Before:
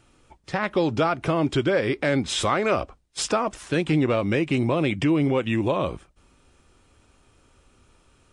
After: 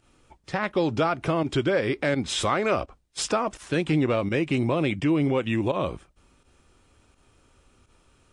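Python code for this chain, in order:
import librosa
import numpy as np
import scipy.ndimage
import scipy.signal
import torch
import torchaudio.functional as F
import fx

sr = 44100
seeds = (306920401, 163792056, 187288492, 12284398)

y = fx.volume_shaper(x, sr, bpm=84, per_beat=1, depth_db=-11, release_ms=80.0, shape='fast start')
y = y * librosa.db_to_amplitude(-1.5)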